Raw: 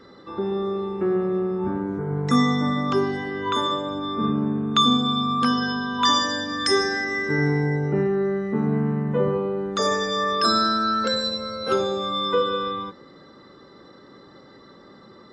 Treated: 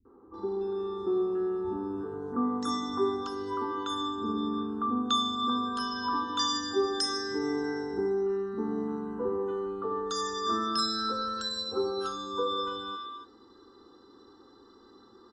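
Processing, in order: fixed phaser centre 590 Hz, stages 6; three bands offset in time lows, mids, highs 50/340 ms, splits 170/1200 Hz; gain -4 dB

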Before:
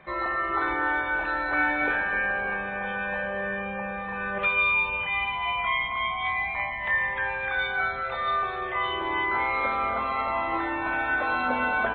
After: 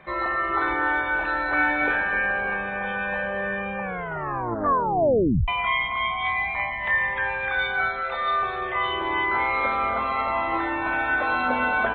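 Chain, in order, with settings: 3.81 tape stop 1.67 s; 7.89–8.39 bell 100 Hz -12.5 dB 1.1 oct; gain +2.5 dB

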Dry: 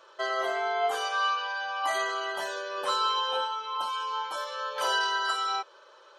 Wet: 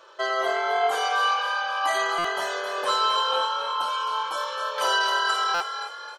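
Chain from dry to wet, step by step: frequency-shifting echo 0.264 s, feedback 47%, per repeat +41 Hz, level -8 dB; stuck buffer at 2.18/5.54, samples 256, times 10; gain +4 dB

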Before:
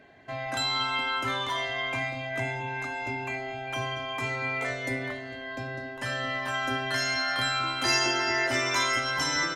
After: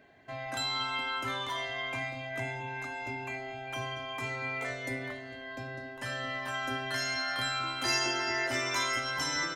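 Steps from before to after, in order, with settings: high shelf 12000 Hz +7 dB; gain -5 dB

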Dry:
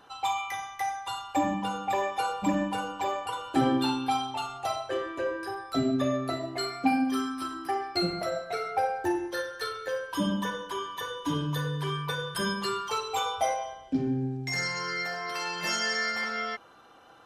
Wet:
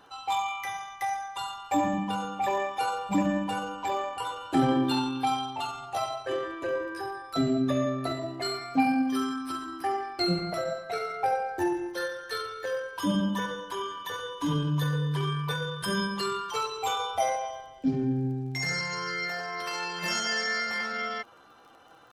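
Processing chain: dynamic EQ 160 Hz, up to +5 dB, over -48 dBFS, Q 3; tempo 0.78×; crackle 20/s -48 dBFS

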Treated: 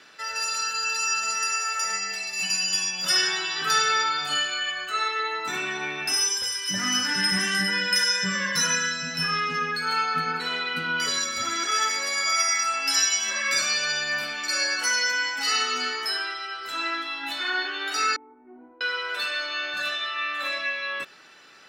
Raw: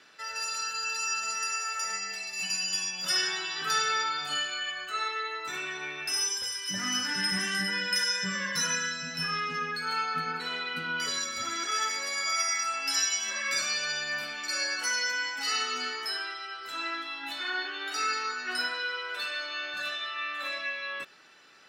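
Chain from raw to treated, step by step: 5.19–6.15 small resonant body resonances 220/800 Hz, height 9 dB, ringing for 25 ms; 18.16–18.81 vocal tract filter u; gain +5.5 dB

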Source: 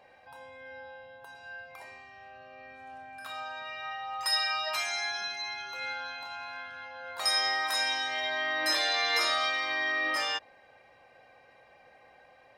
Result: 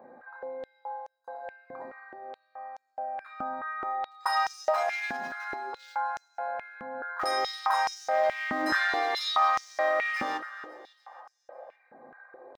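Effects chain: Wiener smoothing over 15 samples; band shelf 5500 Hz -13.5 dB 3 oct; in parallel at +1 dB: limiter -32 dBFS, peak gain reduction 10 dB; on the sum: feedback echo 0.277 s, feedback 56%, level -16.5 dB; on a send at -7 dB: reverb, pre-delay 3 ms; on the sum: stepped high-pass 4.7 Hz 230–6000 Hz

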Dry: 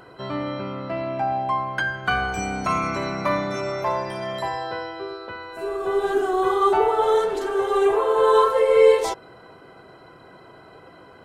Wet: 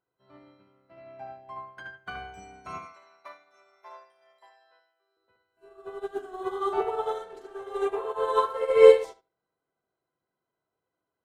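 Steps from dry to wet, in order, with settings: 2.78–5.17 HPF 680 Hz 12 dB/oct; darkening echo 74 ms, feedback 32%, low-pass 4200 Hz, level -5 dB; upward expander 2.5:1, over -36 dBFS

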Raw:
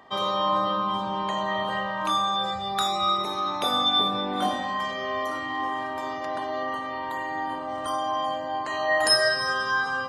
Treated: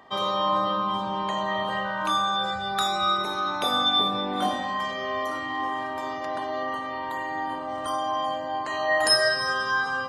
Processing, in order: 1.84–3.96 whine 1500 Hz -36 dBFS

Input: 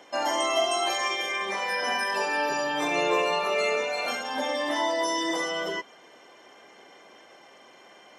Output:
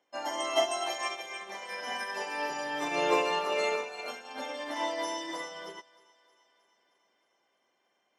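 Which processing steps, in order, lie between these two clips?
thinning echo 0.312 s, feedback 67%, high-pass 400 Hz, level -8.5 dB; upward expander 2.5:1, over -37 dBFS

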